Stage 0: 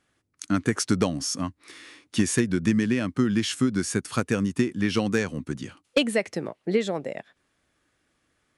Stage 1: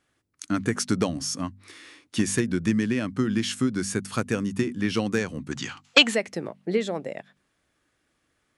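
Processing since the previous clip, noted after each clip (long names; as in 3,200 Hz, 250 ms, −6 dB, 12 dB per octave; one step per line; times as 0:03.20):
gain on a spectral selection 0:05.52–0:06.15, 690–7,900 Hz +12 dB
hum removal 48.68 Hz, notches 5
level −1 dB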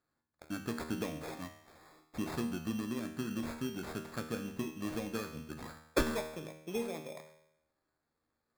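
decimation without filtering 15×
tuned comb filter 78 Hz, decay 0.83 s, harmonics all, mix 80%
level −2.5 dB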